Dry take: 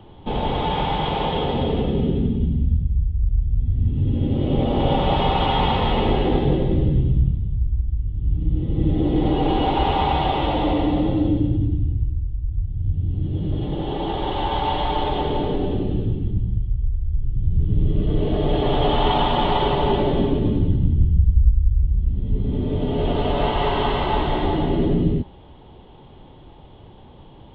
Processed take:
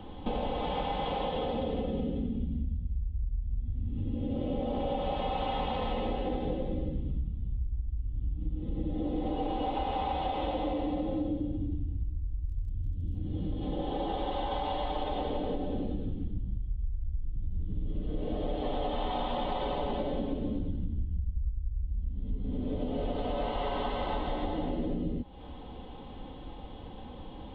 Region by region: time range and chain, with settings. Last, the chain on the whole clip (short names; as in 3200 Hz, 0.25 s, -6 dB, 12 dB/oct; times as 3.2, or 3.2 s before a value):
12.44–13.14 band shelf 1200 Hz -14.5 dB + notches 50/100/150/200/250/300/350/400/450/500 Hz + crackle 26/s -44 dBFS
whole clip: comb 3.9 ms, depth 57%; dynamic EQ 580 Hz, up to +6 dB, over -36 dBFS, Q 2.4; compressor, threshold -30 dBFS